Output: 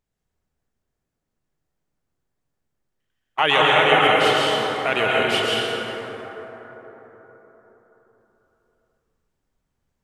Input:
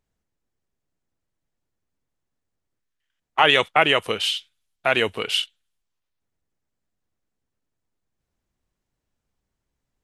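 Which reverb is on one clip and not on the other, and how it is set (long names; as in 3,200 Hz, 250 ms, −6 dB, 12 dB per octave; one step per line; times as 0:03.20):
dense smooth reverb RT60 4.4 s, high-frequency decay 0.35×, pre-delay 105 ms, DRR −5.5 dB
level −3 dB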